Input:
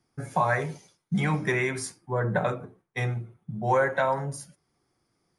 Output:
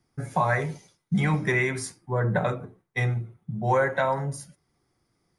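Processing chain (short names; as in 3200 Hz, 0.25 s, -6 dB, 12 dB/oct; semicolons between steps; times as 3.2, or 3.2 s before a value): low shelf 130 Hz +6.5 dB; small resonant body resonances 2000/3800 Hz, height 7 dB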